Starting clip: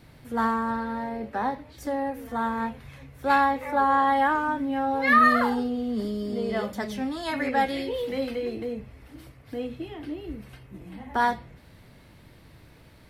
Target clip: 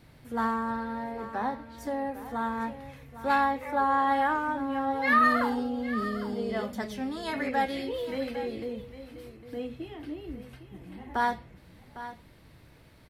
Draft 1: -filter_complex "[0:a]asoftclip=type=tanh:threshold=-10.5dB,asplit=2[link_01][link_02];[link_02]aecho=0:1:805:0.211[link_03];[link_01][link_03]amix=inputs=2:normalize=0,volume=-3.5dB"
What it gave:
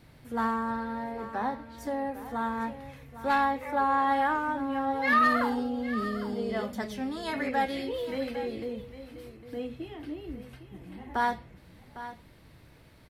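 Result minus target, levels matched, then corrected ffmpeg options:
soft clipping: distortion +10 dB
-filter_complex "[0:a]asoftclip=type=tanh:threshold=-4.5dB,asplit=2[link_01][link_02];[link_02]aecho=0:1:805:0.211[link_03];[link_01][link_03]amix=inputs=2:normalize=0,volume=-3.5dB"

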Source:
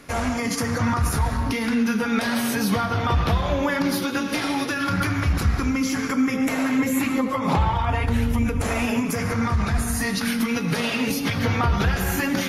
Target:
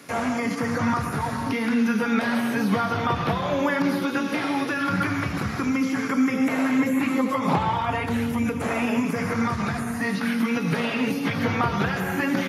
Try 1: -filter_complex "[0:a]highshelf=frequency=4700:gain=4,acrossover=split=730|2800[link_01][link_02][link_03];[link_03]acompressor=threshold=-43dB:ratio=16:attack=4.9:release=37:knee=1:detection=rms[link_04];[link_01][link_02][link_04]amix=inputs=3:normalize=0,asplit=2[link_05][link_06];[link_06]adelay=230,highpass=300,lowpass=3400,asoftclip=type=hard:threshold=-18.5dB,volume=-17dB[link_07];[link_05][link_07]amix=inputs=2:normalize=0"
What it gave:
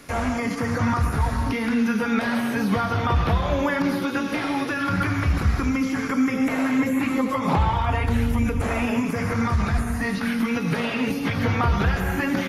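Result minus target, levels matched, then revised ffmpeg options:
125 Hz band +4.5 dB
-filter_complex "[0:a]highpass=frequency=120:width=0.5412,highpass=frequency=120:width=1.3066,highshelf=frequency=4700:gain=4,acrossover=split=730|2800[link_01][link_02][link_03];[link_03]acompressor=threshold=-43dB:ratio=16:attack=4.9:release=37:knee=1:detection=rms[link_04];[link_01][link_02][link_04]amix=inputs=3:normalize=0,asplit=2[link_05][link_06];[link_06]adelay=230,highpass=300,lowpass=3400,asoftclip=type=hard:threshold=-18.5dB,volume=-17dB[link_07];[link_05][link_07]amix=inputs=2:normalize=0"

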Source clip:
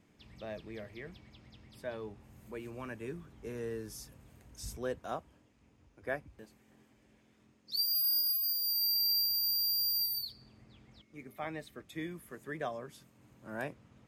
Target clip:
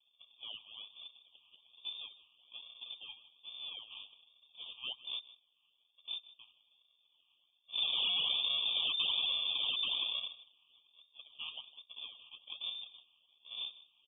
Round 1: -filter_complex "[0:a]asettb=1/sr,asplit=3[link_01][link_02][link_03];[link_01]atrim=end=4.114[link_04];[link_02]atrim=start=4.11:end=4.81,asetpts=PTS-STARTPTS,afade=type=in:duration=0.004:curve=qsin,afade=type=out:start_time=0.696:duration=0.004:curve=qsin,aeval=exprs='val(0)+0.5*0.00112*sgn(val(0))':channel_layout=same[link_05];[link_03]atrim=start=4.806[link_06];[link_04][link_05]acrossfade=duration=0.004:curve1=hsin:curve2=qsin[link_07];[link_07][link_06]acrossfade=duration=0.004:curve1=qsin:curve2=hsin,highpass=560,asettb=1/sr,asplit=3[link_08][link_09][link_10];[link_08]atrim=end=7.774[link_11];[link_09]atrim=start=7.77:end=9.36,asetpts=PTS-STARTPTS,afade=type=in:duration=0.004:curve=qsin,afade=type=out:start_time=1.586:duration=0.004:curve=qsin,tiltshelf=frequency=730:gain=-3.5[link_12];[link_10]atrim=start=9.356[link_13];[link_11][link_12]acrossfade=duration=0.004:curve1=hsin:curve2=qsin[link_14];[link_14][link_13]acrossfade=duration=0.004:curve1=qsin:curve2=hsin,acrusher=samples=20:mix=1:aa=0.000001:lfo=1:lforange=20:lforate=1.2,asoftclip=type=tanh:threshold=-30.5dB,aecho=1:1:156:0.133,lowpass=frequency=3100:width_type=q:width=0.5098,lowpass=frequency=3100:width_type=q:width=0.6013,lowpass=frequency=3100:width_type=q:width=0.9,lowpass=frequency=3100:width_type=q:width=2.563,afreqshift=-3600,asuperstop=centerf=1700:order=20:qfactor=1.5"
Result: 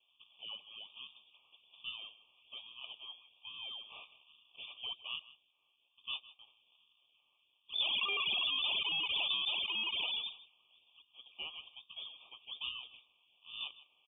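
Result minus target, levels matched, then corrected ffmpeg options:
sample-and-hold swept by an LFO: distortion −12 dB
-filter_complex "[0:a]asettb=1/sr,asplit=3[link_01][link_02][link_03];[link_01]atrim=end=4.114[link_04];[link_02]atrim=start=4.11:end=4.81,asetpts=PTS-STARTPTS,afade=type=in:duration=0.004:curve=qsin,afade=type=out:start_time=0.696:duration=0.004:curve=qsin,aeval=exprs='val(0)+0.5*0.00112*sgn(val(0))':channel_layout=same[link_05];[link_03]atrim=start=4.806[link_06];[link_04][link_05]acrossfade=duration=0.004:curve1=hsin:curve2=qsin[link_07];[link_07][link_06]acrossfade=duration=0.004:curve1=qsin:curve2=hsin,highpass=560,asettb=1/sr,asplit=3[link_08][link_09][link_10];[link_08]atrim=end=7.774[link_11];[link_09]atrim=start=7.77:end=9.36,asetpts=PTS-STARTPTS,afade=type=in:duration=0.004:curve=qsin,afade=type=out:start_time=1.586:duration=0.004:curve=qsin,tiltshelf=frequency=730:gain=-3.5[link_12];[link_10]atrim=start=9.356[link_13];[link_11][link_12]acrossfade=duration=0.004:curve1=hsin:curve2=qsin[link_14];[link_14][link_13]acrossfade=duration=0.004:curve1=qsin:curve2=hsin,acrusher=samples=55:mix=1:aa=0.000001:lfo=1:lforange=55:lforate=1.2,asoftclip=type=tanh:threshold=-30.5dB,aecho=1:1:156:0.133,lowpass=frequency=3100:width_type=q:width=0.5098,lowpass=frequency=3100:width_type=q:width=0.6013,lowpass=frequency=3100:width_type=q:width=0.9,lowpass=frequency=3100:width_type=q:width=2.563,afreqshift=-3600,asuperstop=centerf=1700:order=20:qfactor=1.5"

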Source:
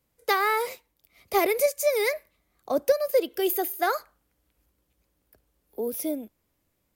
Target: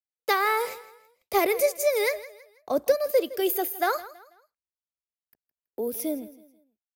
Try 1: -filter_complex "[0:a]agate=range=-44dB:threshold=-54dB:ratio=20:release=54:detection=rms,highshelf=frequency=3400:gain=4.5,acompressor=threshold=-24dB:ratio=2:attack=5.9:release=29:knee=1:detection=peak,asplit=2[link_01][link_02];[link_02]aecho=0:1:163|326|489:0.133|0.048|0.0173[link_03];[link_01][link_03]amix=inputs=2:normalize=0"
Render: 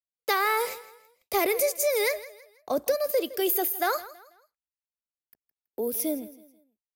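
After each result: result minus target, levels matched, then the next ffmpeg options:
downward compressor: peak gain reduction +5.5 dB; 8,000 Hz band +4.0 dB
-filter_complex "[0:a]agate=range=-44dB:threshold=-54dB:ratio=20:release=54:detection=rms,highshelf=frequency=3400:gain=4.5,asplit=2[link_01][link_02];[link_02]aecho=0:1:163|326|489:0.133|0.048|0.0173[link_03];[link_01][link_03]amix=inputs=2:normalize=0"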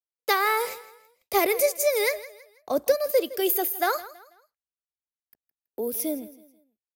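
8,000 Hz band +3.0 dB
-filter_complex "[0:a]agate=range=-44dB:threshold=-54dB:ratio=20:release=54:detection=rms,asplit=2[link_01][link_02];[link_02]aecho=0:1:163|326|489:0.133|0.048|0.0173[link_03];[link_01][link_03]amix=inputs=2:normalize=0"

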